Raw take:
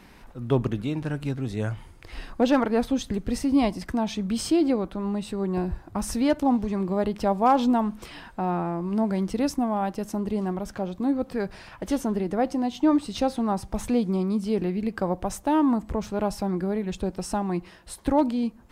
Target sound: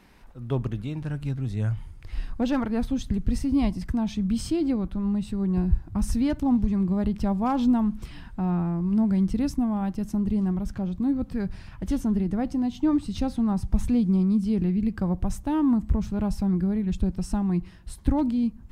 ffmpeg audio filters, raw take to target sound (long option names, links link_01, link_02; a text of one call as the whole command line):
ffmpeg -i in.wav -af "asubboost=boost=7.5:cutoff=180,volume=-5.5dB" out.wav